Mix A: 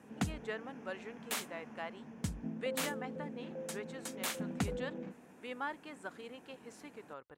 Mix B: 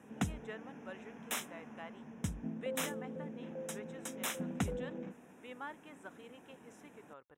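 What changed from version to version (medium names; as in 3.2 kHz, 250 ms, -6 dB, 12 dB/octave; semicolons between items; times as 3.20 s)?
speech -6.0 dB; master: add Butterworth band-stop 4.5 kHz, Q 3.5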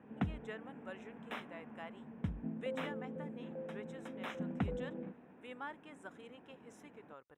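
background: add distance through air 440 m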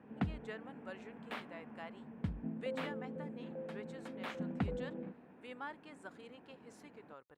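master: remove Butterworth band-stop 4.5 kHz, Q 3.5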